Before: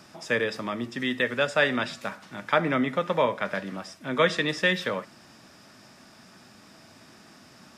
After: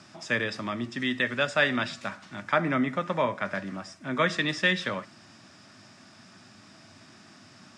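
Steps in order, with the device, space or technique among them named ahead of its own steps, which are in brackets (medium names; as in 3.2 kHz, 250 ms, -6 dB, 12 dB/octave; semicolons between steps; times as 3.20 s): car door speaker (cabinet simulation 100–8700 Hz, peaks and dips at 100 Hz +9 dB, 470 Hz -9 dB, 870 Hz -3 dB); 2.42–4.39 s: peaking EQ 3.4 kHz -5 dB 0.93 oct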